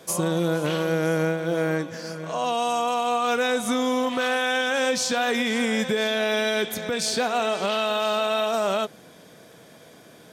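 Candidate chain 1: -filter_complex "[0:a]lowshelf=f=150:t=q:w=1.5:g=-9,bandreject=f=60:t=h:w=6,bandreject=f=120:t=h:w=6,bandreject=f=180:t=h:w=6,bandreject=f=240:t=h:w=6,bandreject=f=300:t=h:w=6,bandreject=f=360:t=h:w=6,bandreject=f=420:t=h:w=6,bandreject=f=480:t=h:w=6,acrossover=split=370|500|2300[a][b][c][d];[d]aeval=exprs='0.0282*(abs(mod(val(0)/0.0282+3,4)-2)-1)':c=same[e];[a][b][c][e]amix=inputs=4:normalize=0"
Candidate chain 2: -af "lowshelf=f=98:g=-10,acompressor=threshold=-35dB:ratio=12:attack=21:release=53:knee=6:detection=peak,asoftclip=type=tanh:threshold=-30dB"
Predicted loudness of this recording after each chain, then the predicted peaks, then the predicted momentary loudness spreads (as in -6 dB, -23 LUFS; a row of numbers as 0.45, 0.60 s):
-24.5, -36.5 LUFS; -12.5, -30.0 dBFS; 5, 14 LU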